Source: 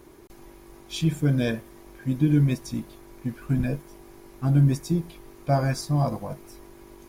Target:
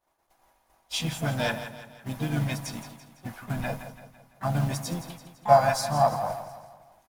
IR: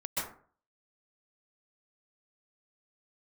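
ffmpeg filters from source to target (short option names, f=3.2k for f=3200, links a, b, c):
-filter_complex "[0:a]asplit=2[a][b];[b]acrusher=bits=5:mode=log:mix=0:aa=0.000001,volume=-10dB[c];[a][c]amix=inputs=2:normalize=0,agate=range=-33dB:threshold=-33dB:ratio=3:detection=peak,asplit=4[d][e][f][g];[e]asetrate=37084,aresample=44100,atempo=1.18921,volume=-10dB[h];[f]asetrate=52444,aresample=44100,atempo=0.840896,volume=-15dB[i];[g]asetrate=66075,aresample=44100,atempo=0.66742,volume=-12dB[j];[d][h][i][j]amix=inputs=4:normalize=0,lowshelf=f=530:t=q:w=3:g=-10,bandreject=f=2.3k:w=29,asplit=2[k][l];[l]aecho=0:1:168|336|504|672|840:0.266|0.128|0.0613|0.0294|0.0141[m];[k][m]amix=inputs=2:normalize=0"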